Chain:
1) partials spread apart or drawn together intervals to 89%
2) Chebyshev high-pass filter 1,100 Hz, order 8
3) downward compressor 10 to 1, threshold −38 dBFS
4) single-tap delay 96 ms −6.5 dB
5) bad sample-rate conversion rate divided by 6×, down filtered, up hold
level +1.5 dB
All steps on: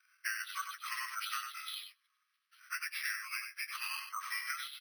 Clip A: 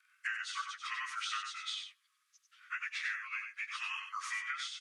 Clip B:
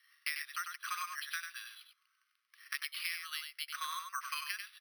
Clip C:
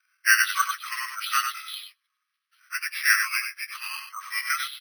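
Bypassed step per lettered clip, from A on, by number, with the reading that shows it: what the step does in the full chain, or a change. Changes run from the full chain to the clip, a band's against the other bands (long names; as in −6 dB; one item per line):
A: 5, 8 kHz band −4.0 dB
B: 1, 2 kHz band −2.0 dB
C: 3, change in crest factor +4.0 dB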